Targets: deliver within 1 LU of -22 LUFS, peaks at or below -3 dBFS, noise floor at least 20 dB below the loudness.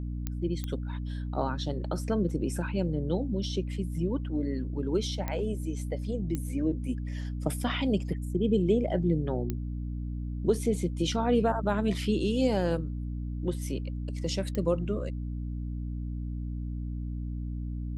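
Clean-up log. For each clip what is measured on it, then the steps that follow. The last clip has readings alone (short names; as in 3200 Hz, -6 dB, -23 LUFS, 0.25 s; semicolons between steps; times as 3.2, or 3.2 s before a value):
clicks 6; hum 60 Hz; harmonics up to 300 Hz; hum level -31 dBFS; loudness -31.0 LUFS; peak -13.5 dBFS; loudness target -22.0 LUFS
-> de-click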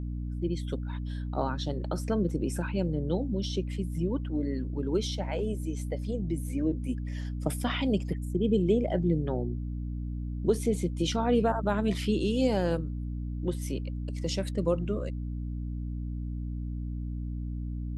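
clicks 0; hum 60 Hz; harmonics up to 300 Hz; hum level -31 dBFS
-> notches 60/120/180/240/300 Hz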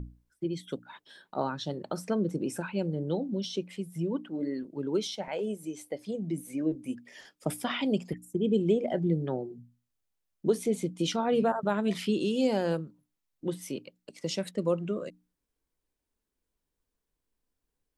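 hum none; loudness -31.5 LUFS; peak -14.0 dBFS; loudness target -22.0 LUFS
-> gain +9.5 dB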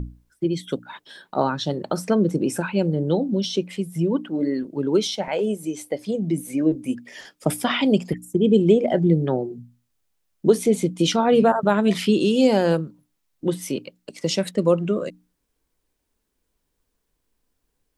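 loudness -22.0 LUFS; peak -4.5 dBFS; noise floor -75 dBFS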